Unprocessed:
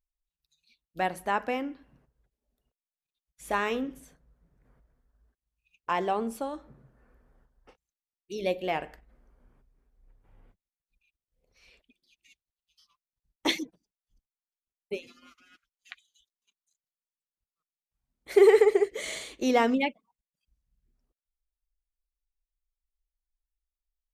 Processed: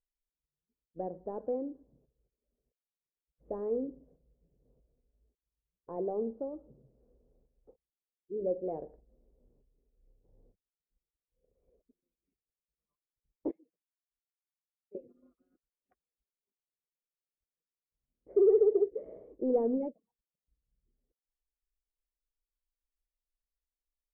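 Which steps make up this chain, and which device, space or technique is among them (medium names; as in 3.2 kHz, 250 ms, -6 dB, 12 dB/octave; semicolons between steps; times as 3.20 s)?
13.51–14.95 s: pre-emphasis filter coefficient 0.97; overdriven synthesiser ladder filter (saturation -19 dBFS, distortion -10 dB; four-pole ladder low-pass 570 Hz, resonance 50%); trim +3 dB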